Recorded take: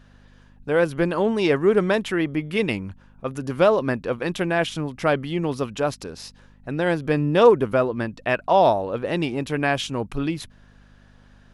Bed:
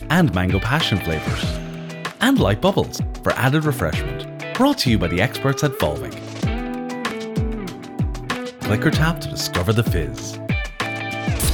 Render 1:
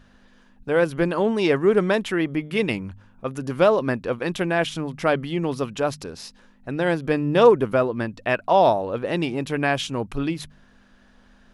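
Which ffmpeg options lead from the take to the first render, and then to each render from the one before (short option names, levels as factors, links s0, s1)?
-af "bandreject=f=50:t=h:w=4,bandreject=f=100:t=h:w=4,bandreject=f=150:t=h:w=4"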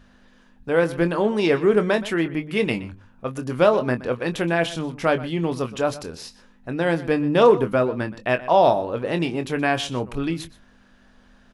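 -filter_complex "[0:a]asplit=2[s0][s1];[s1]adelay=24,volume=0.316[s2];[s0][s2]amix=inputs=2:normalize=0,asplit=2[s3][s4];[s4]adelay=122.4,volume=0.141,highshelf=f=4000:g=-2.76[s5];[s3][s5]amix=inputs=2:normalize=0"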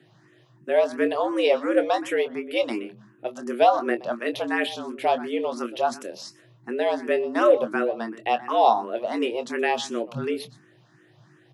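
-filter_complex "[0:a]afreqshift=110,asplit=2[s0][s1];[s1]afreqshift=2.8[s2];[s0][s2]amix=inputs=2:normalize=1"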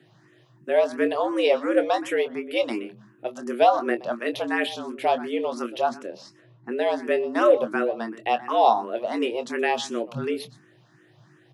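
-filter_complex "[0:a]asettb=1/sr,asplit=3[s0][s1][s2];[s0]atrim=end=5.894[s3];[s1]atrim=start=5.89:end=6.72,asetpts=PTS-STARTPTS,afade=t=in:d=0.004:c=qsin,afade=t=out:st=0.826:d=0.004:c=qsin,aemphasis=mode=reproduction:type=75fm[s4];[s2]atrim=start=6.716[s5];[s3][s4]acrossfade=d=0.004:c1=hsin:c2=qsin[s6];[s6][s5]acrossfade=d=0.004:c1=qsin:c2=hsin"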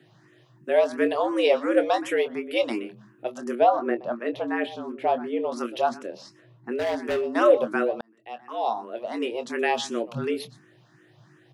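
-filter_complex "[0:a]asettb=1/sr,asplit=3[s0][s1][s2];[s0]atrim=end=3.554[s3];[s1]atrim=start=3.55:end=5.52,asetpts=PTS-STARTPTS,afade=t=in:d=0.004:c=qsin,afade=t=out:st=1.966:d=0.004:c=qsin,lowpass=f=1200:p=1[s4];[s2]atrim=start=5.516[s5];[s3][s4]acrossfade=d=0.004:c1=hsin:c2=qsin[s6];[s6][s5]acrossfade=d=0.004:c1=qsin:c2=hsin,asettb=1/sr,asplit=3[s7][s8][s9];[s7]atrim=end=6.754[s10];[s8]atrim=start=6.75:end=7.31,asetpts=PTS-STARTPTS,afade=t=in:d=0.004:c=qsin,afade=t=out:st=0.556:d=0.004:c=qsin,asoftclip=type=hard:threshold=0.0794[s11];[s9]atrim=start=7.306[s12];[s10][s11]acrossfade=d=0.004:c1=hsin:c2=qsin[s13];[s13][s12]acrossfade=d=0.004:c1=qsin:c2=hsin,asplit=2[s14][s15];[s14]atrim=end=8.01,asetpts=PTS-STARTPTS,afade=t=out:st=8.006:d=0.004:c=hsin[s16];[s15]atrim=start=8.01,asetpts=PTS-STARTPTS,afade=t=in:d=1.75[s17];[s16][s17]concat=n=2:v=0:a=1"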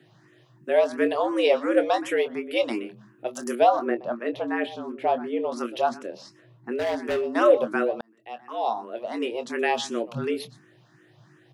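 -filter_complex "[0:a]asettb=1/sr,asplit=3[s0][s1][s2];[s0]atrim=end=3.344[s3];[s1]atrim=start=3.34:end=3.85,asetpts=PTS-STARTPTS,afade=t=in:d=0.004:c=qsin,afade=t=out:st=0.506:d=0.004:c=qsin,aemphasis=mode=production:type=75kf[s4];[s2]atrim=start=3.846[s5];[s3][s4]acrossfade=d=0.004:c1=hsin:c2=qsin[s6];[s6][s5]acrossfade=d=0.004:c1=qsin:c2=hsin"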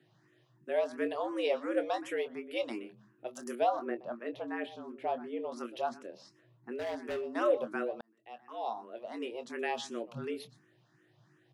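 -af "volume=0.299"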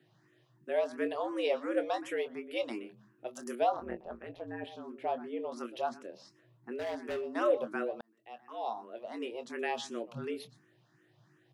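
-filter_complex "[0:a]asettb=1/sr,asplit=3[s0][s1][s2];[s0]atrim=end=3.724[s3];[s1]atrim=start=3.72:end=4.67,asetpts=PTS-STARTPTS,afade=t=in:d=0.004:c=qsin,afade=t=out:st=0.946:d=0.004:c=qsin,tremolo=f=170:d=0.857[s4];[s2]atrim=start=4.666[s5];[s3][s4]acrossfade=d=0.004:c1=hsin:c2=qsin[s6];[s6][s5]acrossfade=d=0.004:c1=qsin:c2=hsin"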